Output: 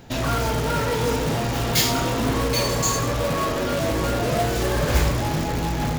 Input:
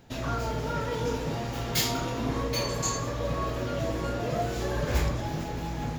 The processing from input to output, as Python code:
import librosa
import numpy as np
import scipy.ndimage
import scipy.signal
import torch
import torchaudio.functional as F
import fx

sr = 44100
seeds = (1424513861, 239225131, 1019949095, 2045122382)

p1 = fx.hum_notches(x, sr, base_hz=60, count=2, at=(3.21, 3.91))
p2 = (np.mod(10.0 ** (27.0 / 20.0) * p1 + 1.0, 2.0) - 1.0) / 10.0 ** (27.0 / 20.0)
p3 = p1 + (p2 * librosa.db_to_amplitude(-6.5))
y = p3 * librosa.db_to_amplitude(6.5)